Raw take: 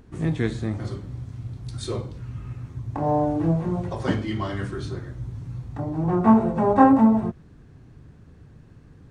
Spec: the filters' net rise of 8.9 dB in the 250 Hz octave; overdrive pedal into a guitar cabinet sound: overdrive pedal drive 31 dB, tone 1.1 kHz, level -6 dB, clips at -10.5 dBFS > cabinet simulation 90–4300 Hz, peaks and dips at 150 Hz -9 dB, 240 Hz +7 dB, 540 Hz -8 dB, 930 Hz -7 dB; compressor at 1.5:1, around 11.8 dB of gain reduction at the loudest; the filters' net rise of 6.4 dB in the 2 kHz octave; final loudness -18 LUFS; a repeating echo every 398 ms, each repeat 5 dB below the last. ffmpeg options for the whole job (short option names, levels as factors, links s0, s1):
-filter_complex "[0:a]equalizer=f=250:t=o:g=6.5,equalizer=f=2000:t=o:g=8.5,acompressor=threshold=0.01:ratio=1.5,aecho=1:1:398|796|1194|1592|1990|2388|2786:0.562|0.315|0.176|0.0988|0.0553|0.031|0.0173,asplit=2[s0][s1];[s1]highpass=f=720:p=1,volume=35.5,asoftclip=type=tanh:threshold=0.299[s2];[s0][s2]amix=inputs=2:normalize=0,lowpass=f=1100:p=1,volume=0.501,highpass=90,equalizer=f=150:t=q:w=4:g=-9,equalizer=f=240:t=q:w=4:g=7,equalizer=f=540:t=q:w=4:g=-8,equalizer=f=930:t=q:w=4:g=-7,lowpass=f=4300:w=0.5412,lowpass=f=4300:w=1.3066,volume=1.26"